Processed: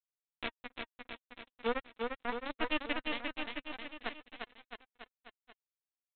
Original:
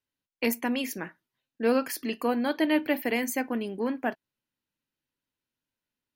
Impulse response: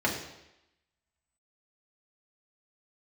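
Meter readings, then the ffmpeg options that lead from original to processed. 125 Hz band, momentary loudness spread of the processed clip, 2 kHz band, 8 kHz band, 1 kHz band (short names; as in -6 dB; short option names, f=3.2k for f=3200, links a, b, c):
n/a, 17 LU, -6.0 dB, under -40 dB, -7.0 dB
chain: -af "highpass=57,aresample=8000,acrusher=bits=2:mix=0:aa=0.5,aresample=44100,flanger=delay=2.1:depth=1.9:regen=49:speed=0.54:shape=sinusoidal,aecho=1:1:350|665|948.5|1204|1433:0.631|0.398|0.251|0.158|0.1,volume=-2.5dB"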